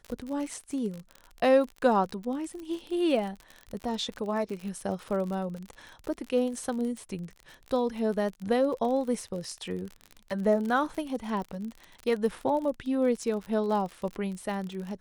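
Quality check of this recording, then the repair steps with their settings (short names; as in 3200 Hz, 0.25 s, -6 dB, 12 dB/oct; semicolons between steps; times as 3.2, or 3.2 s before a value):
crackle 47/s -34 dBFS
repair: de-click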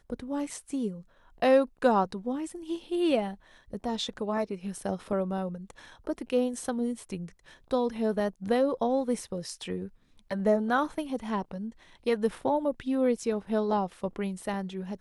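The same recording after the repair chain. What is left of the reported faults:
none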